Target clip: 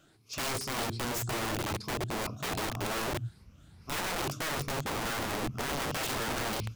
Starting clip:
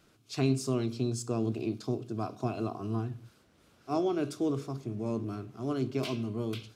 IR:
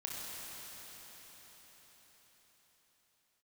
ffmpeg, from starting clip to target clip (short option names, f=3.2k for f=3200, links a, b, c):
-af "afftfilt=real='re*pow(10,9/40*sin(2*PI*(0.86*log(max(b,1)*sr/1024/100)/log(2)-(2.5)*(pts-256)/sr)))':imag='im*pow(10,9/40*sin(2*PI*(0.86*log(max(b,1)*sr/1024/100)/log(2)-(2.5)*(pts-256)/sr)))':win_size=1024:overlap=0.75,asubboost=boost=11:cutoff=130,aeval=exprs='(mod(26.6*val(0)+1,2)-1)/26.6':c=same"